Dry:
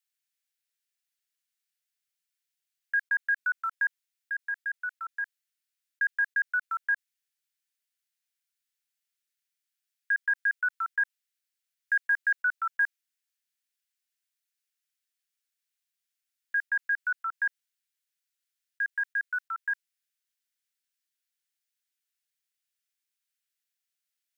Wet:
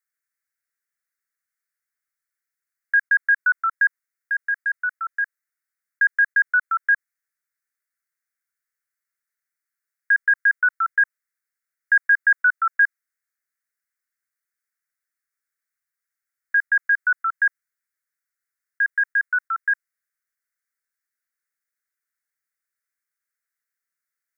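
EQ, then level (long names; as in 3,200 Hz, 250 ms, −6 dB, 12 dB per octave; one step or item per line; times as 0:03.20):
flat-topped bell 1,600 Hz +9.5 dB 1.1 octaves
phaser with its sweep stopped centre 840 Hz, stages 6
0.0 dB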